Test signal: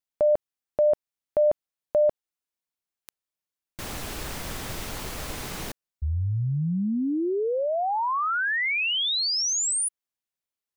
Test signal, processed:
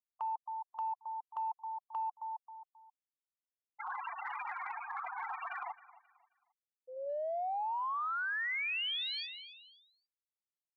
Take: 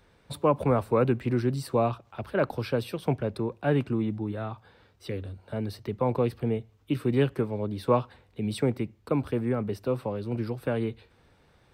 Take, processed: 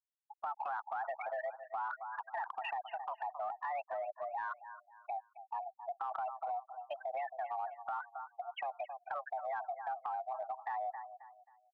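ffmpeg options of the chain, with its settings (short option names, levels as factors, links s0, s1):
-af "highpass=f=470:t=q:w=0.5412,highpass=f=470:t=q:w=1.307,lowpass=f=2800:t=q:w=0.5176,lowpass=f=2800:t=q:w=0.7071,lowpass=f=2800:t=q:w=1.932,afreqshift=290,alimiter=limit=0.0631:level=0:latency=1:release=66,afftfilt=real='re*gte(hypot(re,im),0.0316)':imag='im*gte(hypot(re,im),0.0316)':win_size=1024:overlap=0.75,aecho=1:1:267|534|801:0.112|0.0359|0.0115,acompressor=threshold=0.00891:ratio=10:attack=1:release=35:knee=1:detection=peak,volume=2.11"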